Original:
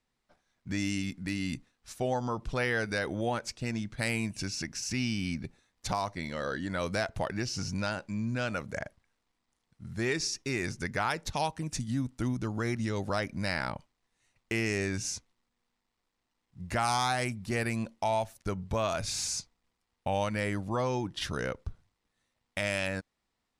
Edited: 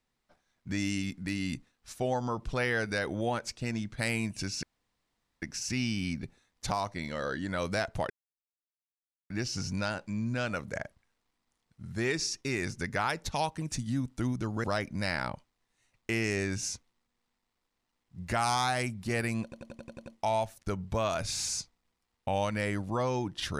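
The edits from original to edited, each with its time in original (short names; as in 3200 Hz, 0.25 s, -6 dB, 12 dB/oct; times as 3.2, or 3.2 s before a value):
4.63 insert room tone 0.79 s
7.31 insert silence 1.20 s
12.65–13.06 cut
17.85 stutter 0.09 s, 8 plays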